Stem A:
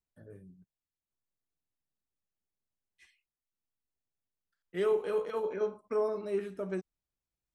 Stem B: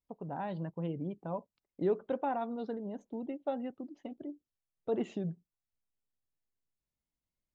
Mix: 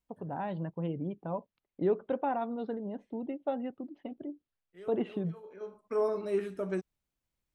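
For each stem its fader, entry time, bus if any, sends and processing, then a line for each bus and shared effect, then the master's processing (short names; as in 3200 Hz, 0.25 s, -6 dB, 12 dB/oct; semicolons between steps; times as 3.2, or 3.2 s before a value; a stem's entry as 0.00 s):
+2.0 dB, 0.00 s, no send, auto duck -20 dB, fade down 0.55 s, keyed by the second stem
+2.0 dB, 0.00 s, no send, LPF 3700 Hz 24 dB/oct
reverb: off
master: dry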